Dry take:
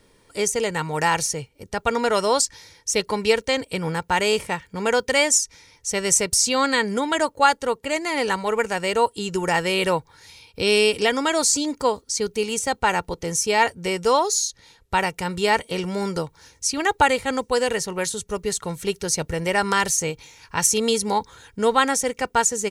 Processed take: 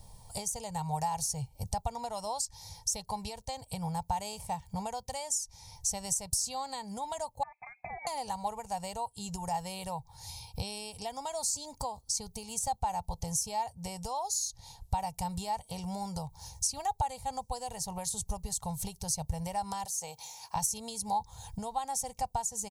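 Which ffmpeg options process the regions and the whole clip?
ffmpeg -i in.wav -filter_complex "[0:a]asettb=1/sr,asplit=3[link_01][link_02][link_03];[link_01]atrim=end=7.434[link_04];[link_02]atrim=start=7.43:end=8.07,asetpts=PTS-STARTPTS,afade=type=in:duration=0.004:curve=qsin,afade=type=out:start_time=0.636:duration=0.004:curve=qsin,acompressor=threshold=-29dB:ratio=5:attack=3.2:release=140:knee=1:detection=peak,lowpass=frequency=2200:width_type=q:width=0.5098,lowpass=frequency=2200:width_type=q:width=0.6013,lowpass=frequency=2200:width_type=q:width=0.9,lowpass=frequency=2200:width_type=q:width=2.563,afreqshift=-2600[link_05];[link_03]atrim=start=8.066[link_06];[link_04][link_05]acrossfade=duration=0.004:curve1=hsin:curve2=qsin[link_07];[link_07][link_06]acrossfade=duration=0.004:curve1=qsin:curve2=hsin,asettb=1/sr,asplit=3[link_08][link_09][link_10];[link_08]atrim=end=19.854[link_11];[link_09]atrim=start=19.85:end=20.56,asetpts=PTS-STARTPTS,afade=type=in:duration=0.004:curve=qsin,afade=type=out:start_time=0.706:duration=0.004:curve=qsin,highpass=390,acompressor=threshold=-27dB:ratio=3:attack=3.2:release=140:knee=1:detection=peak[link_12];[link_10]atrim=start=20.556[link_13];[link_11][link_12]acrossfade=duration=0.004:curve1=hsin:curve2=qsin[link_14];[link_14][link_13]acrossfade=duration=0.004:curve1=qsin:curve2=hsin,lowshelf=frequency=130:gain=7.5,acompressor=threshold=-32dB:ratio=16,firequalizer=gain_entry='entry(130,0);entry(330,-25);entry(770,5);entry(1400,-22);entry(4400,-4);entry(12000,3)':delay=0.05:min_phase=1,volume=5.5dB" out.wav

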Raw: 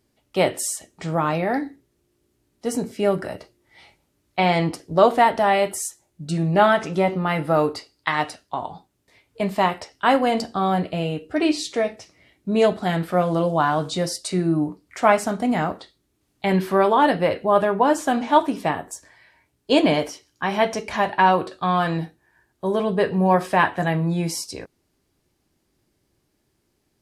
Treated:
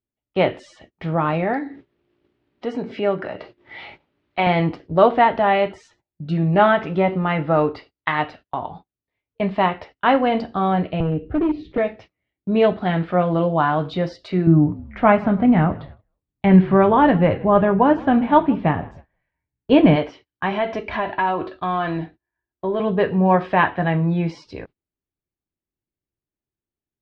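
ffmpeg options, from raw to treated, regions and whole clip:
ffmpeg -i in.wav -filter_complex "[0:a]asettb=1/sr,asplit=3[link_01][link_02][link_03];[link_01]atrim=end=1.534[link_04];[link_02]atrim=start=1.53:end=4.47,asetpts=PTS-STARTPTS,afade=type=in:duration=0.004:curve=qsin,afade=type=out:start_time=2.936:duration=0.004:curve=qsin,highpass=frequency=310:poles=1,acompressor=mode=upward:threshold=-24dB:ratio=2.5:attack=3.2:release=140:knee=2.83:detection=peak[link_05];[link_03]atrim=start=4.466[link_06];[link_04][link_05]acrossfade=duration=0.004:curve1=hsin:curve2=qsin[link_07];[link_07][link_06]acrossfade=duration=0.004:curve1=qsin:curve2=hsin,asettb=1/sr,asplit=3[link_08][link_09][link_10];[link_08]atrim=end=11.004[link_11];[link_09]atrim=start=11:end=11.78,asetpts=PTS-STARTPTS,afade=type=in:duration=0.004:curve=qsin,afade=type=out:start_time=0.776:duration=0.004:curve=qsin,aemphasis=mode=reproduction:type=riaa,acrossover=split=260|750[link_12][link_13][link_14];[link_12]acompressor=threshold=-27dB:ratio=4[link_15];[link_13]acompressor=threshold=-20dB:ratio=4[link_16];[link_14]acompressor=threshold=-45dB:ratio=4[link_17];[link_15][link_16][link_17]amix=inputs=3:normalize=0,volume=17dB,asoftclip=hard,volume=-17dB[link_18];[link_10]atrim=start=11.776[link_19];[link_11][link_18]acrossfade=duration=0.004:curve1=hsin:curve2=qsin[link_20];[link_20][link_19]acrossfade=duration=0.004:curve1=qsin:curve2=hsin,asettb=1/sr,asplit=3[link_21][link_22][link_23];[link_21]atrim=end=14.474[link_24];[link_22]atrim=start=14.47:end=19.96,asetpts=PTS-STARTPTS,afade=type=in:duration=0.004:curve=qsin,afade=type=out:start_time=5.486:duration=0.004:curve=qsin,bass=frequency=250:gain=10,treble=frequency=4000:gain=-12,asplit=4[link_25][link_26][link_27][link_28];[link_26]adelay=159,afreqshift=-43,volume=-22dB[link_29];[link_27]adelay=318,afreqshift=-86,volume=-28.4dB[link_30];[link_28]adelay=477,afreqshift=-129,volume=-34.8dB[link_31];[link_25][link_29][link_30][link_31]amix=inputs=4:normalize=0,atrim=end_sample=242109[link_32];[link_23]atrim=start=19.956[link_33];[link_24][link_32]acrossfade=duration=0.004:curve1=hsin:curve2=qsin[link_34];[link_34][link_33]acrossfade=duration=0.004:curve1=qsin:curve2=hsin,asettb=1/sr,asplit=3[link_35][link_36][link_37];[link_35]atrim=end=20.524[link_38];[link_36]atrim=start=20.52:end=22.8,asetpts=PTS-STARTPTS,afade=type=in:duration=0.004:curve=qsin,afade=type=out:start_time=2.276:duration=0.004:curve=qsin,acompressor=threshold=-21dB:ratio=2.5:attack=3.2:release=140:knee=1:detection=peak,aecho=1:1:3:0.38,atrim=end_sample=100548[link_39];[link_37]atrim=start=22.796[link_40];[link_38][link_39]acrossfade=duration=0.004:curve1=hsin:curve2=qsin[link_41];[link_41][link_40]acrossfade=duration=0.004:curve1=qsin:curve2=hsin,agate=range=-25dB:threshold=-42dB:ratio=16:detection=peak,lowpass=frequency=3300:width=0.5412,lowpass=frequency=3300:width=1.3066,lowshelf=frequency=110:gain=6,volume=1dB" out.wav

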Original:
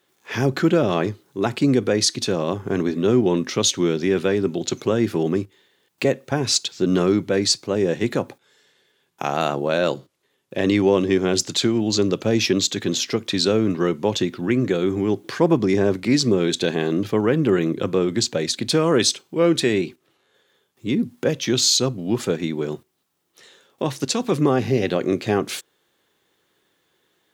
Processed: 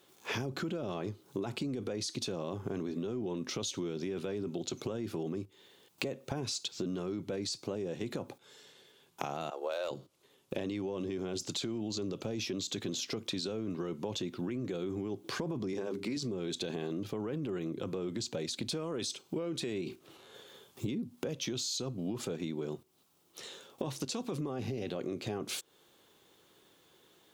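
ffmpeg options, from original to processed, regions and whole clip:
ffmpeg -i in.wav -filter_complex "[0:a]asettb=1/sr,asplit=3[link_01][link_02][link_03];[link_01]atrim=end=9.504[link_04];[link_02]atrim=start=9.5:end=9.91,asetpts=PTS-STARTPTS,afade=type=in:duration=0.004:curve=qsin,afade=type=out:start_time=0.406:duration=0.004:curve=qsin,agate=range=-33dB:threshold=-21dB:ratio=3:release=100:detection=peak,highpass=frequency=460:width=0.5412,highpass=frequency=460:width=1.3066,asoftclip=type=hard:threshold=-15.5dB[link_05];[link_03]atrim=start=9.906[link_06];[link_04][link_05]acrossfade=duration=0.004:curve1=hsin:curve2=qsin[link_07];[link_07][link_06]acrossfade=duration=0.004:curve1=qsin:curve2=hsin,asettb=1/sr,asplit=3[link_08][link_09][link_10];[link_08]atrim=end=15.734[link_11];[link_09]atrim=start=15.73:end=16.17,asetpts=PTS-STARTPTS,afade=type=in:duration=0.004:curve=qsin,afade=type=out:start_time=0.436:duration=0.004:curve=qsin,highpass=160,equalizer=frequency=650:width=4.6:gain=-6.5,bandreject=frequency=50:width_type=h:width=6,bandreject=frequency=100:width_type=h:width=6,bandreject=frequency=150:width_type=h:width=6,bandreject=frequency=200:width_type=h:width=6,bandreject=frequency=250:width_type=h:width=6,bandreject=frequency=300:width_type=h:width=6,bandreject=frequency=350:width_type=h:width=6,bandreject=frequency=400:width_type=h:width=6,bandreject=frequency=450:width_type=h:width=6[link_12];[link_10]atrim=start=16.166[link_13];[link_11][link_12]acrossfade=duration=0.004:curve1=hsin:curve2=qsin[link_14];[link_14][link_13]acrossfade=duration=0.004:curve1=qsin:curve2=hsin,asettb=1/sr,asplit=3[link_15][link_16][link_17];[link_15]atrim=end=19.864[link_18];[link_16]atrim=start=19.86:end=20.87,asetpts=PTS-STARTPTS,afade=type=in:duration=0.004:curve=qsin,afade=type=out:start_time=1.006:duration=0.004:curve=qsin,acontrast=59,asplit=2[link_19][link_20];[link_20]adelay=34,volume=-11dB[link_21];[link_19][link_21]amix=inputs=2:normalize=0,atrim=end_sample=44541[link_22];[link_17]atrim=start=20.866[link_23];[link_18][link_22]acrossfade=duration=0.004:curve1=hsin:curve2=qsin[link_24];[link_24][link_23]acrossfade=duration=0.004:curve1=qsin:curve2=hsin,equalizer=frequency=1800:width=2.5:gain=-7,alimiter=limit=-16dB:level=0:latency=1:release=16,acompressor=threshold=-37dB:ratio=10,volume=3.5dB" out.wav

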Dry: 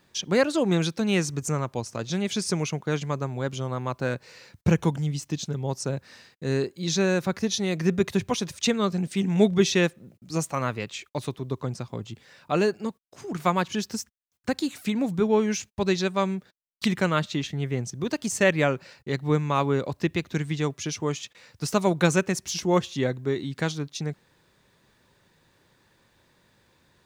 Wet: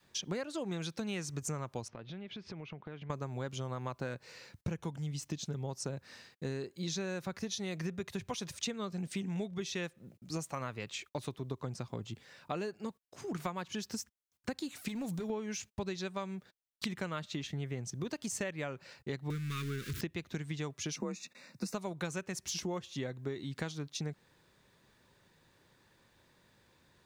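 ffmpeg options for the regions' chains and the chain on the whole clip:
ffmpeg -i in.wav -filter_complex "[0:a]asettb=1/sr,asplit=3[link_01][link_02][link_03];[link_01]atrim=end=1.884[link_04];[link_02]atrim=start=1.88:end=3.1,asetpts=PTS-STARTPTS,afade=type=in:duration=0.004:curve=qsin,afade=type=out:start_time=1.216:duration=0.004:curve=qsin,lowpass=frequency=3300:width=0.5412,lowpass=frequency=3300:width=1.3066,acompressor=threshold=-38dB:ratio=8:attack=3.2:release=140:knee=1:detection=peak[link_05];[link_03]atrim=start=3.096[link_06];[link_04][link_05]acrossfade=duration=0.004:curve1=hsin:curve2=qsin[link_07];[link_07][link_06]acrossfade=duration=0.004:curve1=qsin:curve2=hsin,asettb=1/sr,asplit=3[link_08][link_09][link_10];[link_08]atrim=end=14.884[link_11];[link_09]atrim=start=14.88:end=15.3,asetpts=PTS-STARTPTS,afade=type=in:duration=0.004:curve=qsin,afade=type=out:start_time=0.416:duration=0.004:curve=qsin,acompressor=threshold=-28dB:ratio=5:attack=3.2:release=140:knee=1:detection=peak,highshelf=frequency=4400:gain=11,asoftclip=type=hard:threshold=-27dB[link_12];[link_10]atrim=start=15.296[link_13];[link_11][link_12]acrossfade=duration=0.004:curve1=hsin:curve2=qsin[link_14];[link_14][link_13]acrossfade=duration=0.004:curve1=qsin:curve2=hsin,asettb=1/sr,asplit=3[link_15][link_16][link_17];[link_15]atrim=end=19.304[link_18];[link_16]atrim=start=19.3:end=20.01,asetpts=PTS-STARTPTS,afade=type=in:duration=0.004:curve=qsin,afade=type=out:start_time=0.706:duration=0.004:curve=qsin,aeval=exprs='val(0)+0.5*0.0447*sgn(val(0))':channel_layout=same,asuperstop=centerf=720:order=8:qfactor=0.75,equalizer=frequency=300:width_type=o:width=0.33:gain=-6[link_19];[link_17]atrim=start=20.006[link_20];[link_18][link_19]acrossfade=duration=0.004:curve1=hsin:curve2=qsin[link_21];[link_21][link_20]acrossfade=duration=0.004:curve1=qsin:curve2=hsin,asettb=1/sr,asplit=3[link_22][link_23][link_24];[link_22]atrim=end=20.964[link_25];[link_23]atrim=start=20.96:end=21.74,asetpts=PTS-STARTPTS,afade=type=in:duration=0.004:curve=qsin,afade=type=out:start_time=0.776:duration=0.004:curve=qsin,asuperstop=centerf=3100:order=12:qfactor=4.3,equalizer=frequency=190:width_type=o:width=0.71:gain=9.5,afreqshift=43[link_26];[link_24]atrim=start=21.736[link_27];[link_25][link_26]acrossfade=duration=0.004:curve1=hsin:curve2=qsin[link_28];[link_28][link_27]acrossfade=duration=0.004:curve1=qsin:curve2=hsin,adynamicequalizer=threshold=0.0224:dfrequency=290:dqfactor=0.81:tfrequency=290:tqfactor=0.81:attack=5:release=100:ratio=0.375:range=2.5:mode=cutabove:tftype=bell,acompressor=threshold=-30dB:ratio=12,volume=-4dB" out.wav

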